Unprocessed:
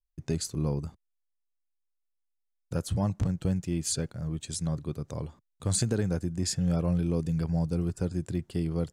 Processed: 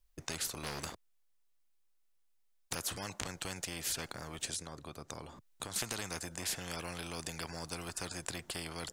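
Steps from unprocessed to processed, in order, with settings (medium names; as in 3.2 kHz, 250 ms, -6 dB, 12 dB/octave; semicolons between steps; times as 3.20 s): 0.63–2.75 s: waveshaping leveller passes 2; 4.45–5.76 s: compression 3:1, threshold -42 dBFS, peak gain reduction 13.5 dB; spectrum-flattening compressor 4:1; trim +1.5 dB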